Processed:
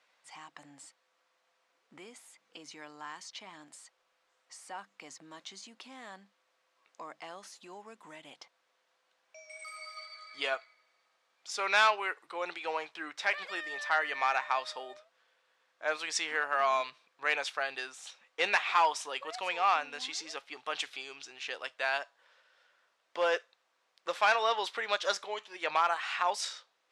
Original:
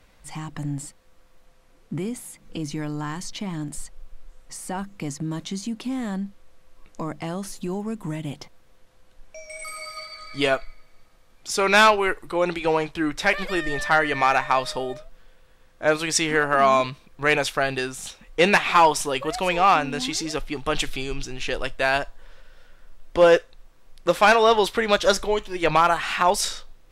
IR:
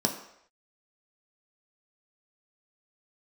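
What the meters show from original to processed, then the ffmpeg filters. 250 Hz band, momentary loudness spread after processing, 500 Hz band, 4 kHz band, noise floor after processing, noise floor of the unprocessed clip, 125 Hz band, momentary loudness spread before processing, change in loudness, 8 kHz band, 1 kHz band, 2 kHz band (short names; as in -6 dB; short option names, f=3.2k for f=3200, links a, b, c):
-24.5 dB, 22 LU, -15.0 dB, -9.0 dB, -76 dBFS, -55 dBFS, under -30 dB, 18 LU, -9.5 dB, -12.5 dB, -10.0 dB, -8.5 dB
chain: -af "highpass=730,lowpass=6.5k,volume=-8.5dB"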